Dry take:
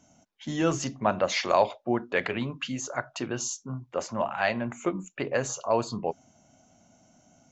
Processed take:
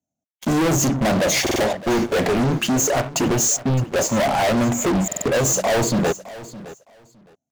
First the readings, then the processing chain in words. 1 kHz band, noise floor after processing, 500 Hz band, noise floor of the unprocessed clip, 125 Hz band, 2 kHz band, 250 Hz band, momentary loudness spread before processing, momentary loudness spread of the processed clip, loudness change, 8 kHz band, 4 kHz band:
+6.0 dB, -85 dBFS, +8.0 dB, -64 dBFS, +13.5 dB, +7.0 dB, +11.5 dB, 10 LU, 6 LU, +9.5 dB, n/a, +10.0 dB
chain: gate -50 dBFS, range -22 dB; HPF 44 Hz 24 dB/oct; band shelf 2300 Hz -12.5 dB 2.7 oct; in parallel at -3 dB: compressor, threshold -37 dBFS, peak gain reduction 18 dB; on the sum: sample leveller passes 5; hard clip -20 dBFS, distortion -11 dB; feedback echo 0.613 s, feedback 18%, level -17 dB; stuck buffer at 1.42/5.07, samples 2048, times 3; gain +3 dB

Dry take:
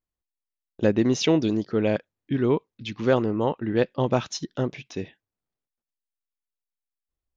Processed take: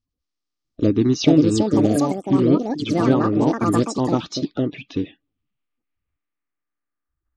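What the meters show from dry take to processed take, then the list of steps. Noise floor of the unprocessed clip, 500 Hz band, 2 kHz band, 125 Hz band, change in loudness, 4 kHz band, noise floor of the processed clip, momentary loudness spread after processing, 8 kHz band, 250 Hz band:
under -85 dBFS, +2.0 dB, -0.5 dB, +6.0 dB, +5.5 dB, +3.0 dB, -82 dBFS, 11 LU, n/a, +8.0 dB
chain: bin magnitudes rounded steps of 30 dB; low shelf 320 Hz +7 dB; in parallel at +2 dB: compressor, threshold -26 dBFS, peak gain reduction 14 dB; on the sum: low-pass sweep 5200 Hz -> 1600 Hz, 3.96–7.09; echoes that change speed 0.648 s, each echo +5 st, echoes 2; small resonant body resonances 290/1200 Hz, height 12 dB, ringing for 50 ms; gain -6.5 dB

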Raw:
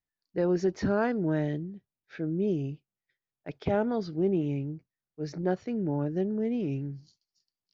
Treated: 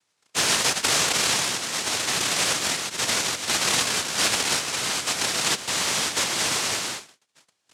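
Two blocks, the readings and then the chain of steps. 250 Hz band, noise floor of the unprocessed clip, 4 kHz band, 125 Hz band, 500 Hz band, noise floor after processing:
-8.0 dB, under -85 dBFS, +31.5 dB, -7.0 dB, -4.0 dB, -74 dBFS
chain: echoes that change speed 0.174 s, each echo +4 st, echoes 3; in parallel at -5 dB: backlash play -24.5 dBFS; on the sum: noise vocoder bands 1; three-band squash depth 70%

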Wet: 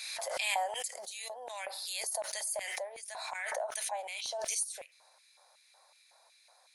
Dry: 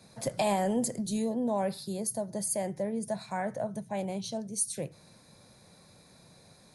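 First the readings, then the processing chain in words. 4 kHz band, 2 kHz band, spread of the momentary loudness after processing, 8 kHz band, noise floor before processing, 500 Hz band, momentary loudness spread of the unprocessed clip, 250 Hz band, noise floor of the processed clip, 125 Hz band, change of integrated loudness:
+5.5 dB, +6.5 dB, 10 LU, -1.0 dB, -58 dBFS, -8.0 dB, 7 LU, under -35 dB, -65 dBFS, under -35 dB, -3.5 dB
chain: Chebyshev high-pass 550 Hz, order 3; LFO high-pass square 2.7 Hz 810–2400 Hz; backwards sustainer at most 23 dB/s; gain -5.5 dB

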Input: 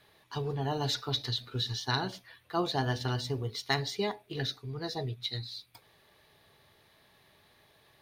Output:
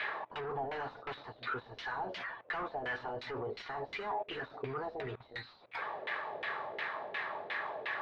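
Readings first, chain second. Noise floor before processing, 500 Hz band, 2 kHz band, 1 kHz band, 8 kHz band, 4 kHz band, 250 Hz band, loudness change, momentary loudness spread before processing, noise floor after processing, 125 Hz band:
-65 dBFS, -3.0 dB, +3.0 dB, 0.0 dB, under -20 dB, -13.5 dB, -11.0 dB, -6.5 dB, 8 LU, -60 dBFS, -16.5 dB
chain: low shelf 320 Hz -10.5 dB; overdrive pedal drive 36 dB, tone 5700 Hz, clips at -14.5 dBFS; level quantiser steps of 20 dB; LFO low-pass saw down 2.8 Hz 470–2400 Hz

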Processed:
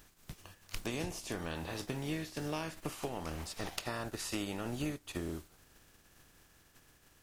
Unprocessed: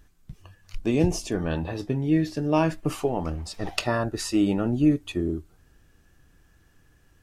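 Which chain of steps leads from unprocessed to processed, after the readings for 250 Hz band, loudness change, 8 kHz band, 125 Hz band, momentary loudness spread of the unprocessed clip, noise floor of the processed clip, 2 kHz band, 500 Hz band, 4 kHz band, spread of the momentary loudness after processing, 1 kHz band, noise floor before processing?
-16.5 dB, -14.0 dB, -6.5 dB, -14.5 dB, 8 LU, -66 dBFS, -8.0 dB, -14.0 dB, -7.0 dB, 8 LU, -11.5 dB, -61 dBFS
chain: spectral contrast lowered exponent 0.56; compressor 4:1, threshold -30 dBFS, peak gain reduction 13 dB; gain -6 dB

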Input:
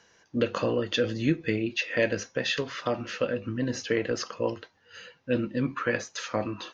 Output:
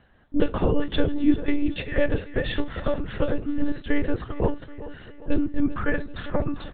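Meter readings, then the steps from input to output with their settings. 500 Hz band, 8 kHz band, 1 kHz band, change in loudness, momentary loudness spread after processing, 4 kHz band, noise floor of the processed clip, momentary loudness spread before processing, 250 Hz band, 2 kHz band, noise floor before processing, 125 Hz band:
+0.5 dB, n/a, +1.0 dB, +2.5 dB, 8 LU, -4.0 dB, -47 dBFS, 6 LU, +5.5 dB, -1.5 dB, -64 dBFS, +3.5 dB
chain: bell 2600 Hz -7.5 dB 0.44 oct; feedback echo 0.393 s, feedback 50%, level -14 dB; monotone LPC vocoder at 8 kHz 290 Hz; low shelf 340 Hz +10 dB

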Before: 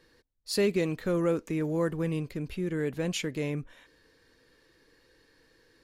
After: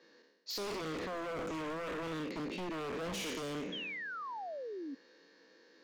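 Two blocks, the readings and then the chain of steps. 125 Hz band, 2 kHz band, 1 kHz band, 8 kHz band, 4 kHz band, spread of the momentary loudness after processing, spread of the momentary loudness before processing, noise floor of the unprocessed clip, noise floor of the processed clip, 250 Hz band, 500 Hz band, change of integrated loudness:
-15.0 dB, -2.0 dB, +3.0 dB, -6.5 dB, -2.5 dB, 5 LU, 8 LU, -65 dBFS, -64 dBFS, -10.0 dB, -9.5 dB, -9.5 dB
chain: spectral trails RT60 1.01 s; Chebyshev band-pass 180–6600 Hz, order 5; bell 580 Hz +4 dB 0.7 oct; limiter -25.5 dBFS, peak gain reduction 12 dB; wavefolder -32 dBFS; painted sound fall, 3.72–4.95, 260–3400 Hz -40 dBFS; gain -2 dB

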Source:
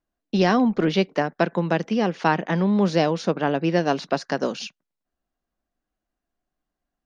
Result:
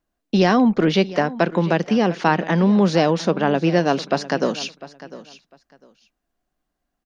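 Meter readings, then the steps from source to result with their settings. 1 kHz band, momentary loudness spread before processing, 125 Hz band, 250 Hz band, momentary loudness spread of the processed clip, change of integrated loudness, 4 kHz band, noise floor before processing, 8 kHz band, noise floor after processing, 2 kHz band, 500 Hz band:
+3.0 dB, 7 LU, +4.0 dB, +4.0 dB, 7 LU, +3.5 dB, +4.0 dB, -85 dBFS, n/a, -79 dBFS, +3.0 dB, +3.5 dB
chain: in parallel at -2 dB: limiter -15.5 dBFS, peak gain reduction 9.5 dB; on the sum: feedback echo 0.701 s, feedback 20%, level -17 dB

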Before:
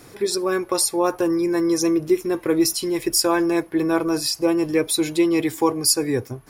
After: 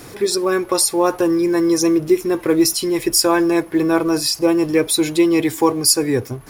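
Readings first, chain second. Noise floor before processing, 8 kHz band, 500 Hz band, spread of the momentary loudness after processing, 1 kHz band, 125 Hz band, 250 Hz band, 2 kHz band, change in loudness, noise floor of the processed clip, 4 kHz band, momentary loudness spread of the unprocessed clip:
-45 dBFS, +4.0 dB, +4.0 dB, 3 LU, +4.0 dB, +4.0 dB, +4.0 dB, +4.0 dB, +4.0 dB, -38 dBFS, +4.0 dB, 3 LU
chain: G.711 law mismatch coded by mu; gain +3.5 dB

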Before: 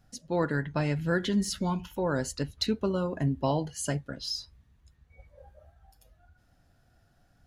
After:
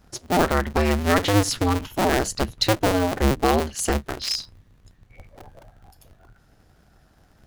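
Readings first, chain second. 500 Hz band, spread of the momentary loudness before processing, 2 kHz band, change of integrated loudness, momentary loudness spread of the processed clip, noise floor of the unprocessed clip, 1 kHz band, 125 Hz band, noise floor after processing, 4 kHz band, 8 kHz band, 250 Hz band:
+8.0 dB, 6 LU, +9.5 dB, +8.0 dB, 6 LU, -66 dBFS, +12.0 dB, +5.5 dB, -58 dBFS, +9.0 dB, +9.5 dB, +6.0 dB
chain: cycle switcher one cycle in 2, inverted; gain +8 dB

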